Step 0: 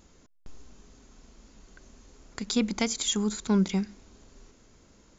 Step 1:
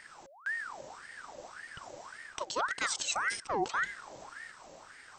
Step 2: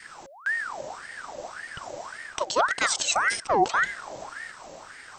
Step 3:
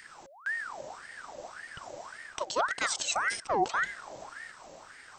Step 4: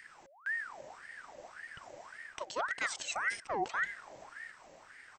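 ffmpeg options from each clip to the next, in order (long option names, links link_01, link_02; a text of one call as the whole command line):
ffmpeg -i in.wav -af "areverse,acompressor=threshold=-35dB:ratio=6,areverse,aeval=exprs='val(0)*sin(2*PI*1200*n/s+1200*0.55/1.8*sin(2*PI*1.8*n/s))':channel_layout=same,volume=7.5dB" out.wav
ffmpeg -i in.wav -af "adynamicequalizer=threshold=0.00282:dfrequency=660:dqfactor=2.7:tfrequency=660:tqfactor=2.7:attack=5:release=100:ratio=0.375:range=3:mode=boostabove:tftype=bell,volume=8dB" out.wav
ffmpeg -i in.wav -af "acompressor=mode=upward:threshold=-45dB:ratio=2.5,volume=-6dB" out.wav
ffmpeg -i in.wav -af "firequalizer=gain_entry='entry(1300,0);entry(1900,6);entry(3700,-2)':delay=0.05:min_phase=1,volume=-7dB" out.wav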